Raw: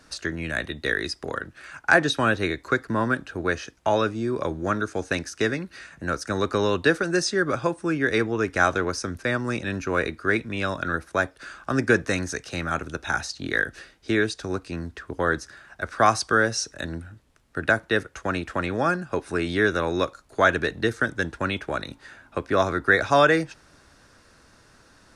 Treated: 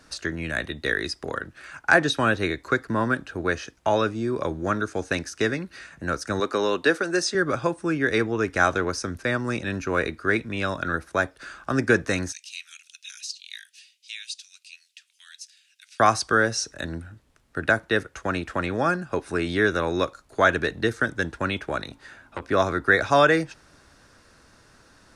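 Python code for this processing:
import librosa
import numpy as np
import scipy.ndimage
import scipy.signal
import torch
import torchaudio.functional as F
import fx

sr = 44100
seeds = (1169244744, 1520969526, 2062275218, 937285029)

y = fx.highpass(x, sr, hz=250.0, slope=12, at=(6.4, 7.35))
y = fx.cheby1_highpass(y, sr, hz=2600.0, order=4, at=(12.32, 16.0))
y = fx.transformer_sat(y, sr, knee_hz=1500.0, at=(21.82, 22.5))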